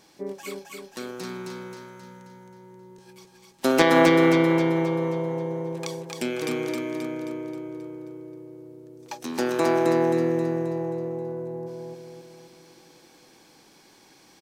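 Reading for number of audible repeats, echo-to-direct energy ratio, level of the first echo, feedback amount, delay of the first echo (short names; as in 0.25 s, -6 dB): 6, -1.5 dB, -3.0 dB, 52%, 0.266 s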